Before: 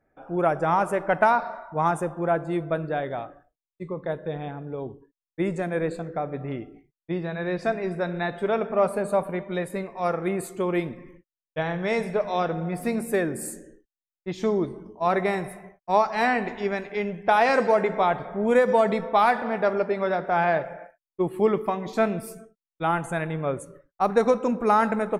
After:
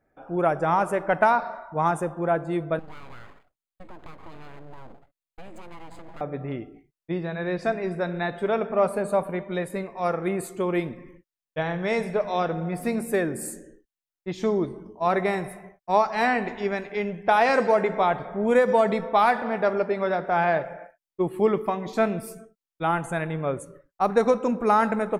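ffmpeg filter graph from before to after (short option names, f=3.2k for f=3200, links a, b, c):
-filter_complex "[0:a]asettb=1/sr,asplit=3[a][b][c];[a]atrim=end=2.794[d];[b]atrim=start=2.79:end=6.21,asetpts=PTS-STARTPTS,afade=t=in:d=0.004:c=qsin,afade=t=out:st=3.416:d=0.004:c=qsin,aeval=exprs='abs(val(0))':c=same,acompressor=threshold=-37dB:ratio=6:attack=3.2:release=140:knee=1:detection=peak,bandreject=f=5.6k:w=7.1[e];[c]atrim=start=6.206[f];[d][e]acrossfade=d=0.004:c1=hsin:c2=qsin[g];[g][f]acrossfade=d=0.004:c1=qsin:c2=hsin"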